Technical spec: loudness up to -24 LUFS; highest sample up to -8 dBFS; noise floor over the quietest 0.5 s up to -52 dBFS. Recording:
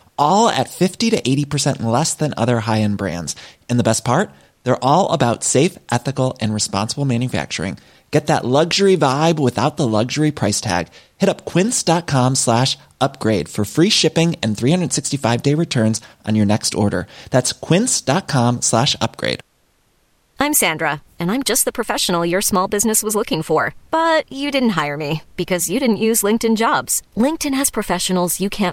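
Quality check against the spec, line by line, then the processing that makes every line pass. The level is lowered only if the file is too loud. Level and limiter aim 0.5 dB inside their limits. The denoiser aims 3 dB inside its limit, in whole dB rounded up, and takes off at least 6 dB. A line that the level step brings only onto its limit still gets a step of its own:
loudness -17.5 LUFS: fail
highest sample -2.5 dBFS: fail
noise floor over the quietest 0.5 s -60 dBFS: OK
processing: gain -7 dB

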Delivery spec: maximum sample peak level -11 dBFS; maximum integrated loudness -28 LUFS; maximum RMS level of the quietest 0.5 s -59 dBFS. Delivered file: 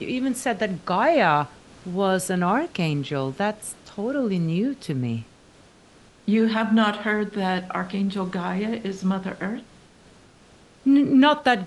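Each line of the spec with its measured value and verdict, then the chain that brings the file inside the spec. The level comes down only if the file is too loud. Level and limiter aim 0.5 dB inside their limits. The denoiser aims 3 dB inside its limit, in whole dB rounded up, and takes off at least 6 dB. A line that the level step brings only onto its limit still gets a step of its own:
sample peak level -6.5 dBFS: fail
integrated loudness -23.5 LUFS: fail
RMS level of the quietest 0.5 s -53 dBFS: fail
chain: denoiser 6 dB, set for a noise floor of -53 dBFS; gain -5 dB

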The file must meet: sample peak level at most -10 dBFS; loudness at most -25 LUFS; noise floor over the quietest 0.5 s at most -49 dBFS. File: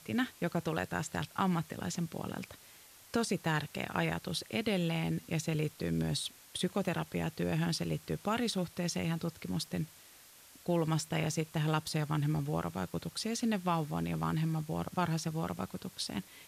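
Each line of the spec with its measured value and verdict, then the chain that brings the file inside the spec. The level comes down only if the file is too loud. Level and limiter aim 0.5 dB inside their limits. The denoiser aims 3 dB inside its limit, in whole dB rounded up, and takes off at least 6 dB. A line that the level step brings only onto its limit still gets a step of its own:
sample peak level -18.0 dBFS: OK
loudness -35.0 LUFS: OK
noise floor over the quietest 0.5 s -57 dBFS: OK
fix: none

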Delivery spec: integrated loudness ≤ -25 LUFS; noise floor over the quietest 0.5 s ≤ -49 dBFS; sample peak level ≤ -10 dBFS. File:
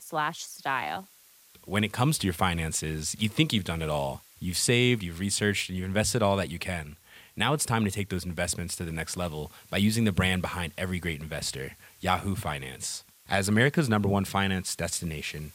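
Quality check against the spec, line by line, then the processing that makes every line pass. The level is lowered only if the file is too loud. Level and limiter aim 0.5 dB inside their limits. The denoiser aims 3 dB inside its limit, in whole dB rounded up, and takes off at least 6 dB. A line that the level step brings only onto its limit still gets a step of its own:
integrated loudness -28.0 LUFS: OK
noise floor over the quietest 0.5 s -57 dBFS: OK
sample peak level -9.0 dBFS: fail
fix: limiter -10.5 dBFS

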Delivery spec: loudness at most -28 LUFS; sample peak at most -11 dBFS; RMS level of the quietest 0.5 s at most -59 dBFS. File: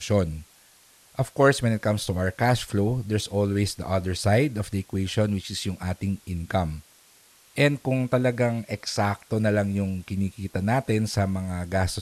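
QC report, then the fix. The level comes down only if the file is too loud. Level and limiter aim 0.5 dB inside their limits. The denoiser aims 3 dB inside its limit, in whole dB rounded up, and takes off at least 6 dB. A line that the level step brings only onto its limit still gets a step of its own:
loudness -25.5 LUFS: fail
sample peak -6.0 dBFS: fail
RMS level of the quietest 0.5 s -56 dBFS: fail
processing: denoiser 6 dB, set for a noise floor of -56 dBFS; gain -3 dB; limiter -11.5 dBFS

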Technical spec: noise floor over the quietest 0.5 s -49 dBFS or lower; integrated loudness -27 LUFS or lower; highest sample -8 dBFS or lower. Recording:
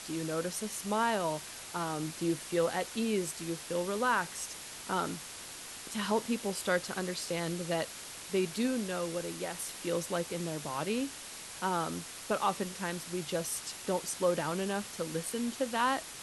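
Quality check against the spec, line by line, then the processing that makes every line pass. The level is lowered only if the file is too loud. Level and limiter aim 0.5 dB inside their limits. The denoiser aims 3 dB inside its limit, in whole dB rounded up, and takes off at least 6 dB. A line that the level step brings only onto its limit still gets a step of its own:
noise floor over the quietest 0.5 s -46 dBFS: fail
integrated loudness -34.0 LUFS: OK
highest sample -16.5 dBFS: OK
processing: denoiser 6 dB, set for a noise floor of -46 dBFS

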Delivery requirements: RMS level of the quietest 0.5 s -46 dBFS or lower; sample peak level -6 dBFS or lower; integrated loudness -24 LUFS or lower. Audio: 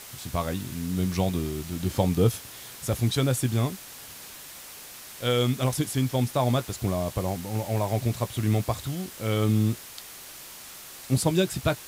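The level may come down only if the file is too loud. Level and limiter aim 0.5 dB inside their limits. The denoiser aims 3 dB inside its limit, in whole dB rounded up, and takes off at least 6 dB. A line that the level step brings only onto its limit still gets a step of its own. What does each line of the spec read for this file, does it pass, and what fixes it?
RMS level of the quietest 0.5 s -44 dBFS: fail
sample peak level -10.0 dBFS: OK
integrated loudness -27.0 LUFS: OK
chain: denoiser 6 dB, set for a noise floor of -44 dBFS

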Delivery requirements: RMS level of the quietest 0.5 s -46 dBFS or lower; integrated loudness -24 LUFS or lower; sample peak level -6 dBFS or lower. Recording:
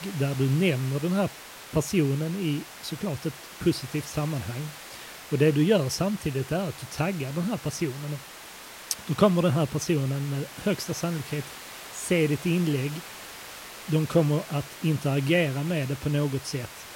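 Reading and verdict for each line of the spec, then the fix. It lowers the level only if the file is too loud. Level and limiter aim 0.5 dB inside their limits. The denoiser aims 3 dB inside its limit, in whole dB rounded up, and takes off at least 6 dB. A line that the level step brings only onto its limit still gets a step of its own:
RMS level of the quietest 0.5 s -44 dBFS: fail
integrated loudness -27.0 LUFS: OK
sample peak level -7.0 dBFS: OK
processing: denoiser 6 dB, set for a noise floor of -44 dBFS

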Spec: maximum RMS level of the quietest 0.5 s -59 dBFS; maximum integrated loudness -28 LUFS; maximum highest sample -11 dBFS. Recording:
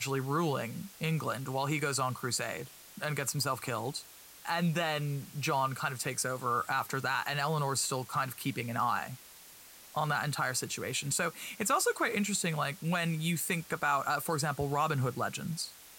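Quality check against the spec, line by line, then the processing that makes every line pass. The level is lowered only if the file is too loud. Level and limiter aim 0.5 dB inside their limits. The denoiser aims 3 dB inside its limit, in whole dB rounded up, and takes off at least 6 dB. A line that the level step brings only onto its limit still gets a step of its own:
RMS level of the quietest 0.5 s -54 dBFS: fail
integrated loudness -32.5 LUFS: OK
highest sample -17.5 dBFS: OK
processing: denoiser 8 dB, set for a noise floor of -54 dBFS

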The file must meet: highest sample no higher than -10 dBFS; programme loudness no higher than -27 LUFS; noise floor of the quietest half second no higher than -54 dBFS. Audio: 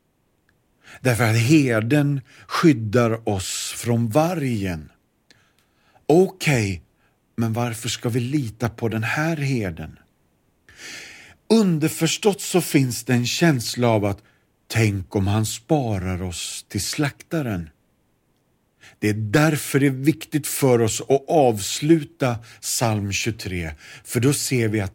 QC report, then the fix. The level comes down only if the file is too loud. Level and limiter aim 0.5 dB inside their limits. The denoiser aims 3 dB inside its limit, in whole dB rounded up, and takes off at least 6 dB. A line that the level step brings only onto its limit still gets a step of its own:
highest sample -4.5 dBFS: fail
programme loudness -21.5 LUFS: fail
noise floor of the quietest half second -65 dBFS: OK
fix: gain -6 dB

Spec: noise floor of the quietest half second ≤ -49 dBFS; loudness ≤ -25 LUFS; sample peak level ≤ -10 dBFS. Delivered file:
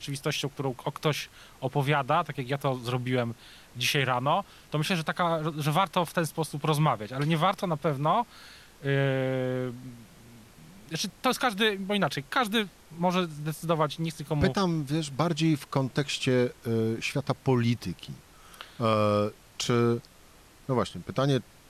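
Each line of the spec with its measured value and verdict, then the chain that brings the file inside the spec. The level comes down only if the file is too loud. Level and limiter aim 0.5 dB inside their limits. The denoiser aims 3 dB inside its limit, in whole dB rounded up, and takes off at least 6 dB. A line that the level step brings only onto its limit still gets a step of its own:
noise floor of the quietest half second -55 dBFS: OK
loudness -28.5 LUFS: OK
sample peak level -11.5 dBFS: OK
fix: none

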